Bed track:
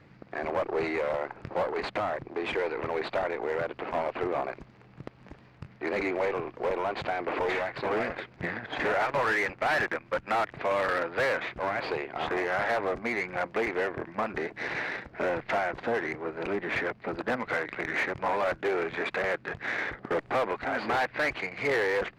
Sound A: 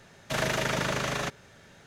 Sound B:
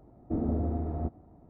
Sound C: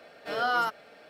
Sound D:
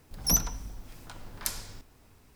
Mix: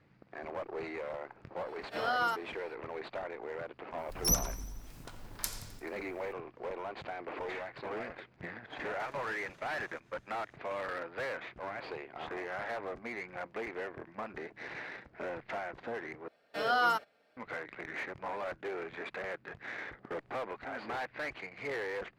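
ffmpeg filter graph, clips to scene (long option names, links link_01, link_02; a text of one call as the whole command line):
ffmpeg -i bed.wav -i cue0.wav -i cue1.wav -i cue2.wav -i cue3.wav -filter_complex "[3:a]asplit=2[link_01][link_02];[0:a]volume=-10.5dB[link_03];[4:a]aecho=1:1:87|174|261|348|435|522:0.141|0.0833|0.0492|0.029|0.0171|0.0101[link_04];[1:a]acompressor=threshold=-41dB:ratio=6:attack=3.2:release=140:knee=1:detection=peak[link_05];[link_02]agate=range=-16dB:threshold=-48dB:ratio=16:release=100:detection=peak[link_06];[link_03]asplit=2[link_07][link_08];[link_07]atrim=end=16.284[link_09];[link_06]atrim=end=1.09,asetpts=PTS-STARTPTS,volume=-1.5dB[link_10];[link_08]atrim=start=17.366[link_11];[link_01]atrim=end=1.09,asetpts=PTS-STARTPTS,volume=-4.5dB,afade=type=in:duration=0.004:curve=hsin,afade=type=out:start_time=1.086:duration=0.004:curve=hsin,adelay=1660[link_12];[link_04]atrim=end=2.35,asetpts=PTS-STARTPTS,volume=-4dB,afade=type=in:duration=0.004:curve=hsin,afade=type=out:start_time=2.346:duration=0.004:curve=hsin,adelay=3980[link_13];[link_05]atrim=end=1.86,asetpts=PTS-STARTPTS,volume=-15.5dB,afade=type=in:duration=0.004:curve=hsin,afade=type=out:start_time=1.856:duration=0.004:curve=hsin,adelay=8700[link_14];[link_09][link_10]acrossfade=duration=0.004:curve1=hsin:curve2=hsin[link_15];[link_15][link_11]acrossfade=duration=0.004:curve1=hsin:curve2=hsin[link_16];[link_16][link_12][link_13][link_14]amix=inputs=4:normalize=0" out.wav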